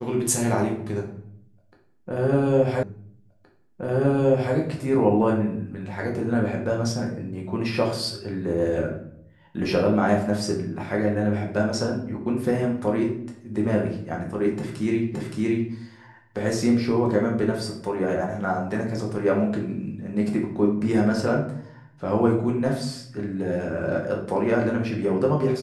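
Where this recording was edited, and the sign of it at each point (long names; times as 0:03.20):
0:02.83: the same again, the last 1.72 s
0:15.14: the same again, the last 0.57 s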